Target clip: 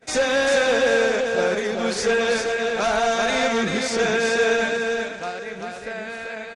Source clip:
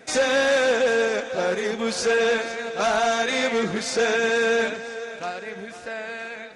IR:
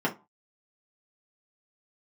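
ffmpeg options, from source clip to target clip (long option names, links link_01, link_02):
-filter_complex "[0:a]asplit=2[link_01][link_02];[link_02]aecho=0:1:390:0.631[link_03];[link_01][link_03]amix=inputs=2:normalize=0,agate=range=-19dB:threshold=-49dB:ratio=16:detection=peak,lowshelf=frequency=74:gain=11"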